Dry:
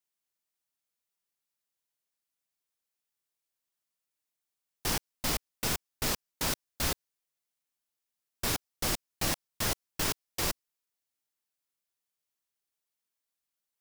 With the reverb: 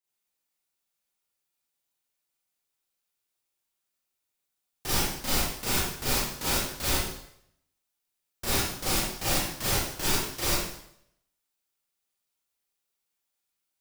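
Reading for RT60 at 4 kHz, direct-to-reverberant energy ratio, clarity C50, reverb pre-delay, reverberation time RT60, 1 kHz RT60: 0.70 s, -9.5 dB, -2.0 dB, 30 ms, 0.70 s, 0.70 s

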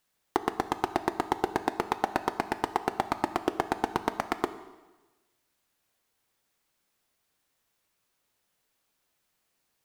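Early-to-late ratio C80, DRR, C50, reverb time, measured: 14.5 dB, 10.0 dB, 13.0 dB, 1.2 s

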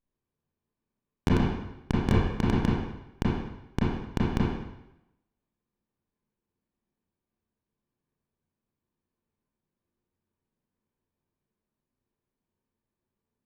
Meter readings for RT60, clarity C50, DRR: 0.90 s, -1.5 dB, -6.5 dB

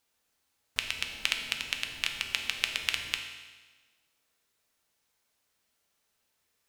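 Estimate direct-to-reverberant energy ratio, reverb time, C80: 3.5 dB, 1.3 s, 8.0 dB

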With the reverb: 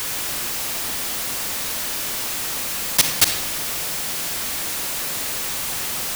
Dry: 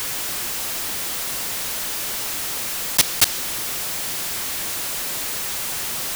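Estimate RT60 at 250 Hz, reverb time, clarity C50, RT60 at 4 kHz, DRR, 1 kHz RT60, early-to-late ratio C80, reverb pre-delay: 1.2 s, 0.95 s, 6.5 dB, 0.50 s, 5.5 dB, 0.85 s, 8.5 dB, 40 ms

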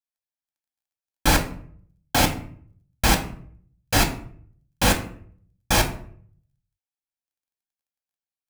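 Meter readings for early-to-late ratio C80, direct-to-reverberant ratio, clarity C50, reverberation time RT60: 14.5 dB, 3.0 dB, 11.5 dB, 0.55 s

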